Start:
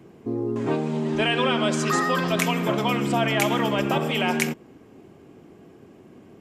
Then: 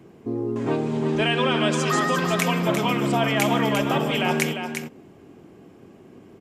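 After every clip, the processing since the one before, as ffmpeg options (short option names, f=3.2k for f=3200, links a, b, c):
-af "aecho=1:1:350:0.447"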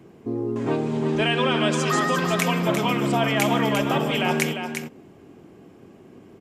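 -af anull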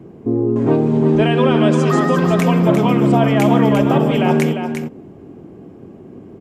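-af "tiltshelf=f=1.1k:g=7.5,volume=3.5dB"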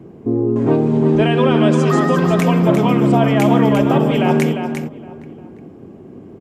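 -filter_complex "[0:a]asplit=2[a][b];[b]adelay=816.3,volume=-21dB,highshelf=f=4k:g=-18.4[c];[a][c]amix=inputs=2:normalize=0"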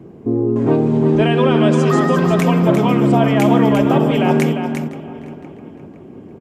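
-filter_complex "[0:a]asplit=2[a][b];[b]adelay=513,lowpass=f=4.7k:p=1,volume=-18dB,asplit=2[c][d];[d]adelay=513,lowpass=f=4.7k:p=1,volume=0.5,asplit=2[e][f];[f]adelay=513,lowpass=f=4.7k:p=1,volume=0.5,asplit=2[g][h];[h]adelay=513,lowpass=f=4.7k:p=1,volume=0.5[i];[a][c][e][g][i]amix=inputs=5:normalize=0"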